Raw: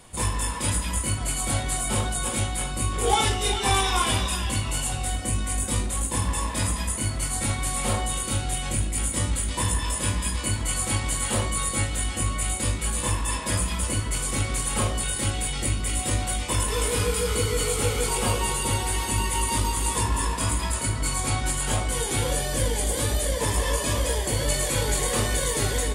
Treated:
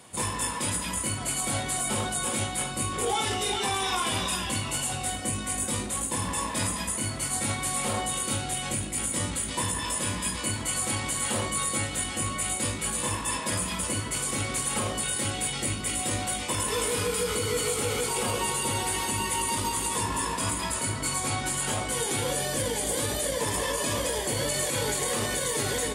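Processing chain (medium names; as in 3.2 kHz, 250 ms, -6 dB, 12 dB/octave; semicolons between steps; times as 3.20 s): high-pass 130 Hz 12 dB/octave; peak limiter -18 dBFS, peak gain reduction 8.5 dB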